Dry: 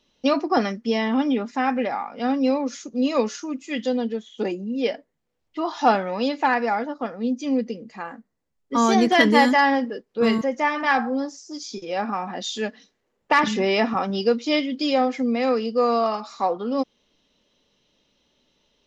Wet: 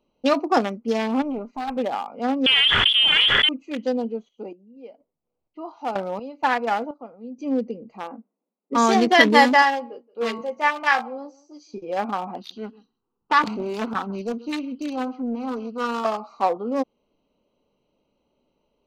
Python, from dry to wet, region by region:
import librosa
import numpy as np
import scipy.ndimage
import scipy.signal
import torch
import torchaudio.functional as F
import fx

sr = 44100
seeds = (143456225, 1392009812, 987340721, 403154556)

y = fx.chain(x, sr, fx.block_float(bits=7),
    fx.tube_stage(drive_db=21.0, bias=0.75), at=(1.22, 1.77))
y = fx.chain(y, sr, fx.lower_of_two(delay_ms=0.56),
    fx.freq_invert(carrier_hz=3400),
    fx.env_flatten(amount_pct=100), at=(2.46, 3.49))
y = fx.chain(y, sr, fx.high_shelf(hz=4700.0, db=5.0),
    fx.tremolo_random(seeds[0], hz=4.2, depth_pct=90), at=(4.05, 7.44))
y = fx.chain(y, sr, fx.brickwall_bandpass(low_hz=180.0, high_hz=2900.0),
    fx.low_shelf(hz=370.0, db=6.0), at=(8.03, 8.74))
y = fx.chain(y, sr, fx.highpass(hz=890.0, slope=6),
    fx.doubler(ms=17.0, db=-9.0),
    fx.echo_single(ms=174, db=-21.5), at=(9.62, 11.74))
y = fx.chain(y, sr, fx.fixed_phaser(hz=2200.0, stages=6),
    fx.echo_single(ms=133, db=-19.5),
    fx.doppler_dist(depth_ms=0.4), at=(12.37, 16.05))
y = fx.wiener(y, sr, points=25)
y = fx.low_shelf(y, sr, hz=390.0, db=-8.0)
y = y * 10.0 ** (4.5 / 20.0)